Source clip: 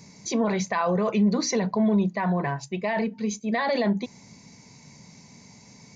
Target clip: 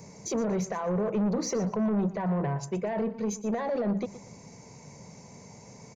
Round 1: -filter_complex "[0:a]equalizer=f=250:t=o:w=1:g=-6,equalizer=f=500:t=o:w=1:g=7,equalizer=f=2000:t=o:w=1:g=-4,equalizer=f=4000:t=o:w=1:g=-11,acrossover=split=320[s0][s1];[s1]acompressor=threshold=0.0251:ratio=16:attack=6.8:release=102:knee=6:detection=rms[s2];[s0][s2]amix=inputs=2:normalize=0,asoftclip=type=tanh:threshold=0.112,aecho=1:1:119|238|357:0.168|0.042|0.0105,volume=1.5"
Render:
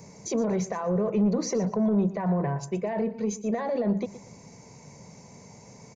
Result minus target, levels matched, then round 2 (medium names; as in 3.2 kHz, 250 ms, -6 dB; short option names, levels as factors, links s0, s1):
saturation: distortion -10 dB
-filter_complex "[0:a]equalizer=f=250:t=o:w=1:g=-6,equalizer=f=500:t=o:w=1:g=7,equalizer=f=2000:t=o:w=1:g=-4,equalizer=f=4000:t=o:w=1:g=-11,acrossover=split=320[s0][s1];[s1]acompressor=threshold=0.0251:ratio=16:attack=6.8:release=102:knee=6:detection=rms[s2];[s0][s2]amix=inputs=2:normalize=0,asoftclip=type=tanh:threshold=0.0473,aecho=1:1:119|238|357:0.168|0.042|0.0105,volume=1.5"